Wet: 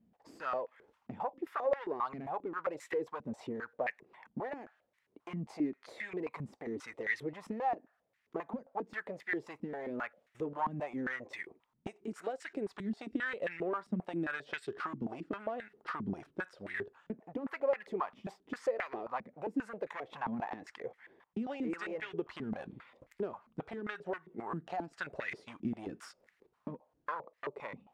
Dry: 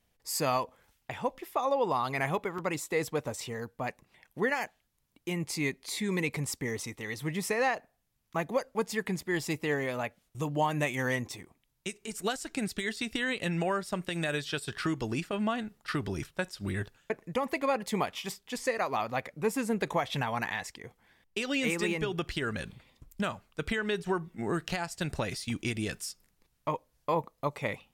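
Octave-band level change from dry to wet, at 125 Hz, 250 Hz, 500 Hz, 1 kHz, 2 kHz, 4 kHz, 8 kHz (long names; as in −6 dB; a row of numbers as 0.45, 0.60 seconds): −12.0 dB, −5.5 dB, −5.5 dB, −6.0 dB, −7.0 dB, −17.5 dB, below −20 dB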